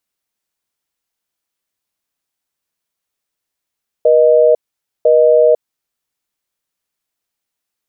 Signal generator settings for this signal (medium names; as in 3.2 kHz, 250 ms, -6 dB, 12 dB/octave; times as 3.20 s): call progress tone busy tone, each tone -9 dBFS 1.54 s